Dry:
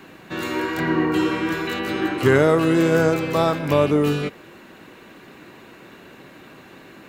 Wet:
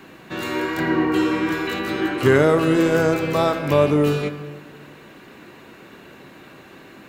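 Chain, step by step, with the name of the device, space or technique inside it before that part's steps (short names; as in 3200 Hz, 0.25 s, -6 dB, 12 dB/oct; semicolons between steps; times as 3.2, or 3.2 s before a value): saturated reverb return (on a send at -9.5 dB: reverb RT60 1.6 s, pre-delay 11 ms + soft clip -13.5 dBFS, distortion -14 dB)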